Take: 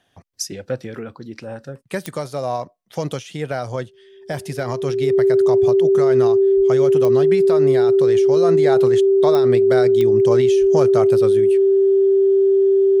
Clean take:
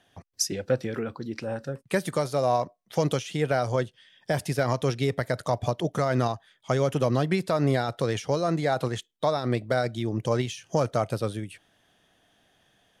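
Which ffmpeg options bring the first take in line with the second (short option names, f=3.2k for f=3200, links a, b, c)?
-filter_complex "[0:a]adeclick=t=4,bandreject=f=390:w=30,asplit=3[a][b][c];[a]afade=t=out:st=6.56:d=0.02[d];[b]highpass=f=140:w=0.5412,highpass=f=140:w=1.3066,afade=t=in:st=6.56:d=0.02,afade=t=out:st=6.68:d=0.02[e];[c]afade=t=in:st=6.68:d=0.02[f];[d][e][f]amix=inputs=3:normalize=0,asplit=3[g][h][i];[g]afade=t=out:st=10.6:d=0.02[j];[h]highpass=f=140:w=0.5412,highpass=f=140:w=1.3066,afade=t=in:st=10.6:d=0.02,afade=t=out:st=10.72:d=0.02[k];[i]afade=t=in:st=10.72:d=0.02[l];[j][k][l]amix=inputs=3:normalize=0,asetnsamples=n=441:p=0,asendcmd='8.36 volume volume -3.5dB',volume=0dB"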